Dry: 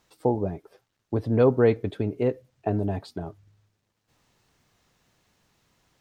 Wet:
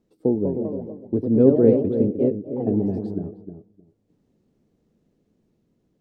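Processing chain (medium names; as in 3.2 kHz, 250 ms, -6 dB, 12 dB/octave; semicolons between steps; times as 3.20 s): FFT filter 120 Hz 0 dB, 210 Hz +10 dB, 430 Hz +6 dB, 910 Hz -13 dB, 1.6 kHz -15 dB; filtered feedback delay 309 ms, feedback 16%, low-pass 840 Hz, level -8 dB; ever faster or slower copies 224 ms, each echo +2 st, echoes 2, each echo -6 dB; trim -2.5 dB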